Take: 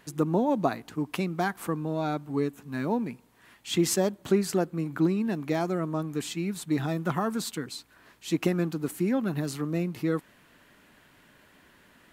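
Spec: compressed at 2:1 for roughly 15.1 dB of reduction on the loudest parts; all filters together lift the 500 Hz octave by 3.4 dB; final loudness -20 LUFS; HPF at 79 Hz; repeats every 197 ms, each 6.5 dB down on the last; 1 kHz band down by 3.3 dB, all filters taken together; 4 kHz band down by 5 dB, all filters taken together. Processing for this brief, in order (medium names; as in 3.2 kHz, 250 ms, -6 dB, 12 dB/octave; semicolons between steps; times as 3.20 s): high-pass 79 Hz; peaking EQ 500 Hz +6.5 dB; peaking EQ 1 kHz -8 dB; peaking EQ 4 kHz -6 dB; compression 2:1, threshold -46 dBFS; feedback delay 197 ms, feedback 47%, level -6.5 dB; trim +19.5 dB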